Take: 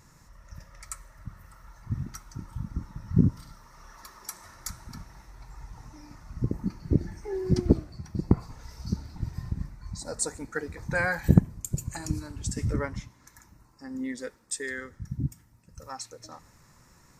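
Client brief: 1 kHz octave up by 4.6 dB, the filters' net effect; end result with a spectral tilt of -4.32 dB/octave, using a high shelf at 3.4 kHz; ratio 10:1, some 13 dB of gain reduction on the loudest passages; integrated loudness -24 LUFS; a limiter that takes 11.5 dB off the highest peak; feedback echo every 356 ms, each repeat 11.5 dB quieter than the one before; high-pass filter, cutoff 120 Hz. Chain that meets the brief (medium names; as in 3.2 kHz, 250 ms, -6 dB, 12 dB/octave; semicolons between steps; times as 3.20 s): high-pass 120 Hz; peaking EQ 1 kHz +5.5 dB; treble shelf 3.4 kHz +7 dB; compression 10:1, threshold -30 dBFS; peak limiter -26.5 dBFS; feedback delay 356 ms, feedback 27%, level -11.5 dB; trim +16.5 dB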